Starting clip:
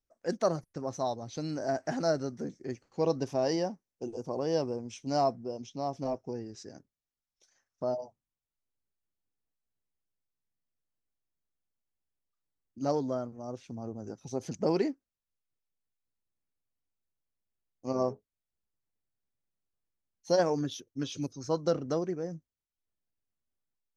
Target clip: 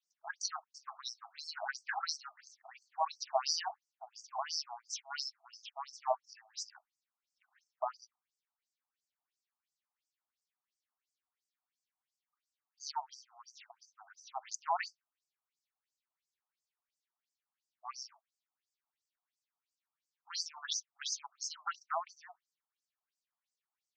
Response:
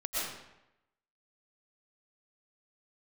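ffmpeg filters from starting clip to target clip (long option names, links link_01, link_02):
-af "afftfilt=real='re*between(b*sr/1024,900*pow(6500/900,0.5+0.5*sin(2*PI*2.9*pts/sr))/1.41,900*pow(6500/900,0.5+0.5*sin(2*PI*2.9*pts/sr))*1.41)':imag='im*between(b*sr/1024,900*pow(6500/900,0.5+0.5*sin(2*PI*2.9*pts/sr))/1.41,900*pow(6500/900,0.5+0.5*sin(2*PI*2.9*pts/sr))*1.41)':win_size=1024:overlap=0.75,volume=8.5dB"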